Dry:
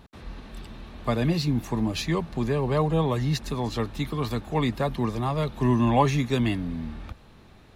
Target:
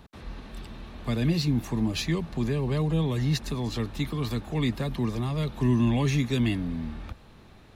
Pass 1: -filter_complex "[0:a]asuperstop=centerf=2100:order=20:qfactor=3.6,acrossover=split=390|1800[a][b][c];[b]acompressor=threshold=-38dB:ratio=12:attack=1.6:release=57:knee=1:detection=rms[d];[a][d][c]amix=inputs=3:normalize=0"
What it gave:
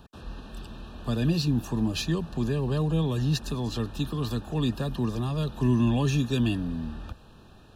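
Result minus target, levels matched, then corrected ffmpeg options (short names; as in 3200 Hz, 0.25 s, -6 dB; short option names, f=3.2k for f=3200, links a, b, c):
2000 Hz band -2.5 dB
-filter_complex "[0:a]acrossover=split=390|1800[a][b][c];[b]acompressor=threshold=-38dB:ratio=12:attack=1.6:release=57:knee=1:detection=rms[d];[a][d][c]amix=inputs=3:normalize=0"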